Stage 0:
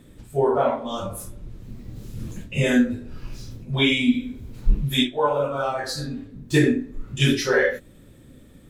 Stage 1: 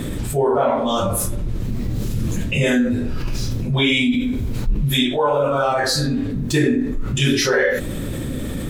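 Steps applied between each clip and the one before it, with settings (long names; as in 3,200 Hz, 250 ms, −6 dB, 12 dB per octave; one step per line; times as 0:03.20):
envelope flattener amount 70%
level −3.5 dB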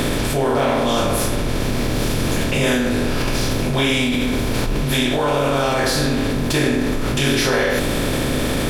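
compressor on every frequency bin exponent 0.4
level −5.5 dB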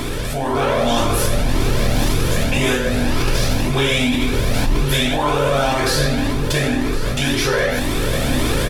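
automatic gain control
single-tap delay 1,074 ms −15.5 dB
flanger whose copies keep moving one way rising 1.9 Hz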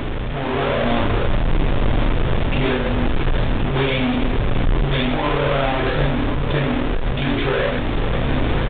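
each half-wave held at its own peak
downsampling to 8,000 Hz
single-tap delay 1,072 ms −16 dB
level −6 dB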